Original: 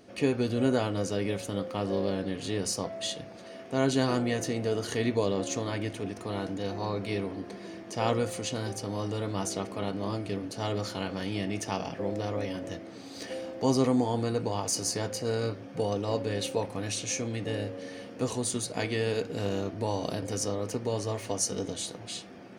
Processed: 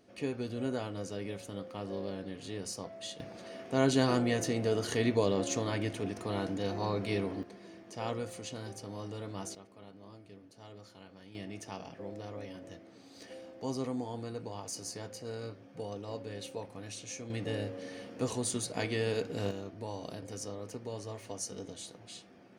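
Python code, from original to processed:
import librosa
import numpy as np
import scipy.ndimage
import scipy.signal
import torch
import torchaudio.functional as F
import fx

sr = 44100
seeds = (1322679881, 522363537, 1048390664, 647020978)

y = fx.gain(x, sr, db=fx.steps((0.0, -9.0), (3.2, -1.0), (7.43, -9.0), (9.55, -20.0), (11.35, -11.0), (17.3, -3.0), (19.51, -10.0)))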